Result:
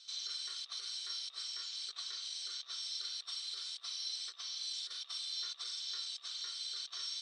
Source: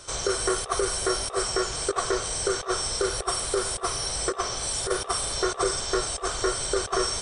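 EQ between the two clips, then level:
resonant band-pass 4,000 Hz, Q 4.9
high-frequency loss of the air 170 metres
first difference
+10.5 dB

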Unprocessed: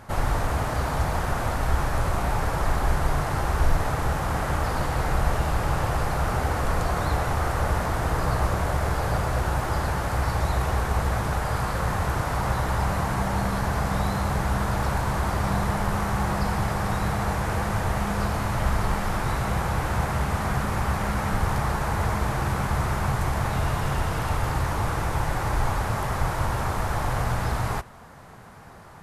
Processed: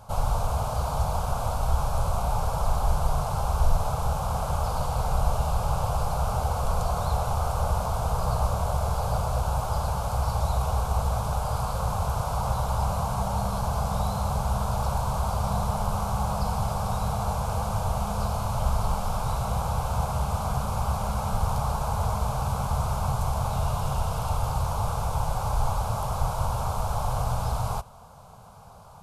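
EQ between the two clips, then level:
phaser with its sweep stopped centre 770 Hz, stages 4
0.0 dB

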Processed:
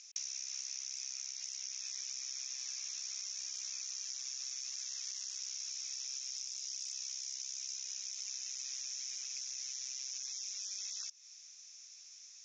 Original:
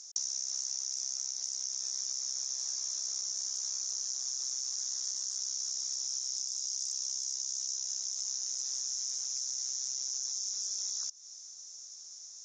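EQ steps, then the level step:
resonant band-pass 2,500 Hz, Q 5.4
+14.5 dB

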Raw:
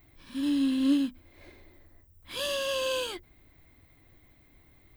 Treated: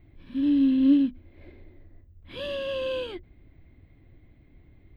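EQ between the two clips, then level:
high-frequency loss of the air 490 metres
parametric band 1,100 Hz −11 dB 1.8 octaves
+7.5 dB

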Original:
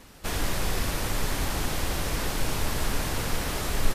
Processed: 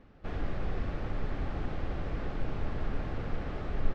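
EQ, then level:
head-to-tape spacing loss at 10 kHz 45 dB
notch filter 960 Hz, Q 8.9
−4.0 dB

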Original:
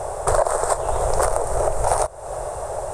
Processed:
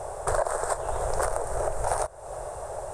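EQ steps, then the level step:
dynamic equaliser 1,600 Hz, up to +5 dB, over −43 dBFS, Q 3.8
−7.5 dB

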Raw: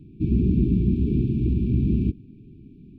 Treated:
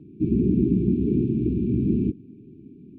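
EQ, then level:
resonant band-pass 500 Hz, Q 0.73
+6.0 dB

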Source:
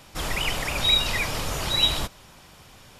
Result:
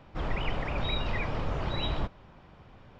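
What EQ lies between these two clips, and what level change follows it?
head-to-tape spacing loss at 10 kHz 43 dB
0.0 dB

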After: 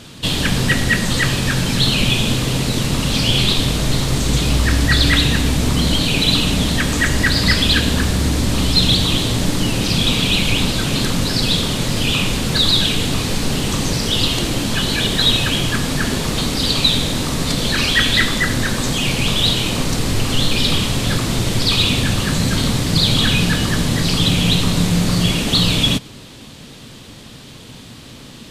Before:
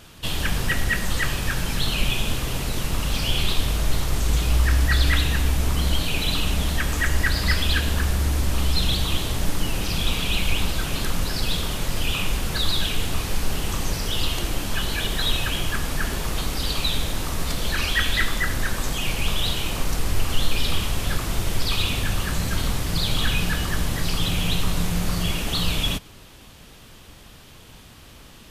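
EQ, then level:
octave-band graphic EQ 125/250/500/1,000/2,000/4,000/8,000 Hz +11/+12/+7/+4/+5/+10/+8 dB
−1.5 dB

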